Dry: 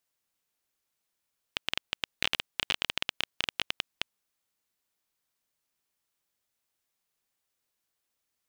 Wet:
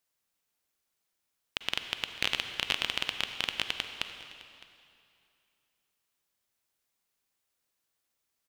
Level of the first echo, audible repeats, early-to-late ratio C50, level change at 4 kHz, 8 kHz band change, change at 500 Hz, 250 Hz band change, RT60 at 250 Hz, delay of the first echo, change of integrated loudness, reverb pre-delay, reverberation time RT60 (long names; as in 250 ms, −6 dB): −20.0 dB, 1, 7.5 dB, +0.5 dB, +0.5 dB, +0.5 dB, +1.0 dB, 2.5 s, 610 ms, +0.5 dB, 38 ms, 2.5 s